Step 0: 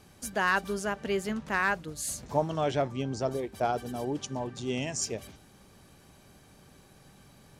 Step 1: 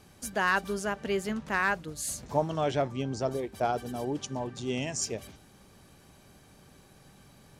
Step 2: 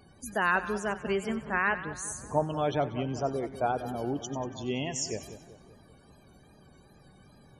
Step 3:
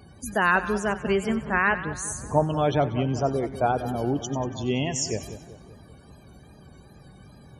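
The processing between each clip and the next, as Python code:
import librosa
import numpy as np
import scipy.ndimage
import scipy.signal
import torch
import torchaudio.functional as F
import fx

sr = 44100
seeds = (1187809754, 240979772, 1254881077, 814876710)

y1 = x
y2 = fx.spec_topn(y1, sr, count=64)
y2 = fx.wow_flutter(y2, sr, seeds[0], rate_hz=2.1, depth_cents=75.0)
y2 = fx.echo_split(y2, sr, split_hz=1500.0, low_ms=191, high_ms=94, feedback_pct=52, wet_db=-12.5)
y3 = scipy.signal.sosfilt(scipy.signal.butter(2, 52.0, 'highpass', fs=sr, output='sos'), y2)
y3 = fx.low_shelf(y3, sr, hz=110.0, db=9.5)
y3 = F.gain(torch.from_numpy(y3), 5.0).numpy()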